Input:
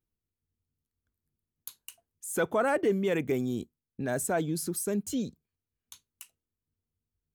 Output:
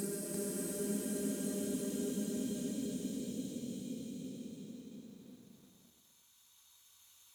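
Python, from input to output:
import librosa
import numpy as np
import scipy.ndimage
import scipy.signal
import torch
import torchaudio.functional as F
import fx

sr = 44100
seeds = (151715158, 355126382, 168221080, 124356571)

y = fx.paulstretch(x, sr, seeds[0], factor=6.9, window_s=1.0, from_s=4.83)
y = fx.echo_crushed(y, sr, ms=343, feedback_pct=35, bits=10, wet_db=-3.0)
y = F.gain(torch.from_numpy(y), -7.5).numpy()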